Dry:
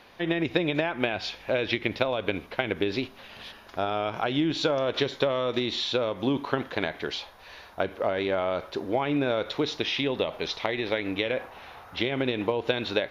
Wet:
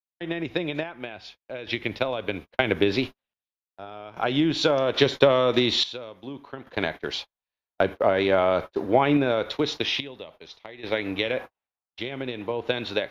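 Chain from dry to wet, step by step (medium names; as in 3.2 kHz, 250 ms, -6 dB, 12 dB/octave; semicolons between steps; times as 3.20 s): gate -35 dBFS, range -45 dB; random-step tremolo 1.2 Hz, depth 80%; three bands expanded up and down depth 40%; trim +5.5 dB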